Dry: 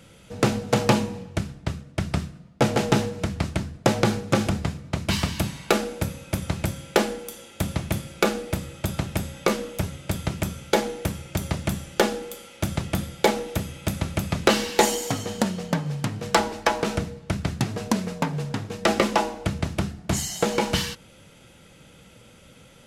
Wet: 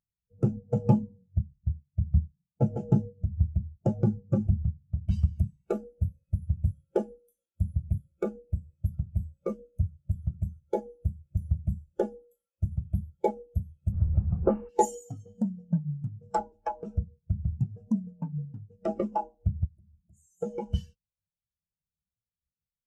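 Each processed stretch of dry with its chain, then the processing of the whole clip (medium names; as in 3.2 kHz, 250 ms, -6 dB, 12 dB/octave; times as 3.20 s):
13.92–14.69 s: one-bit delta coder 16 kbps, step -20.5 dBFS + low-pass 1.7 kHz 6 dB/octave + dynamic bell 980 Hz, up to +4 dB, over -36 dBFS, Q 1.3
19.65–20.41 s: FFT filter 350 Hz 0 dB, 3.9 kHz -8 dB, 8.5 kHz +5 dB + compression 3:1, threshold -37 dBFS
whole clip: graphic EQ 125/250/500/1000/2000/4000 Hz -6/-8/-6/-7/-8/-8 dB; spectral contrast expander 2.5:1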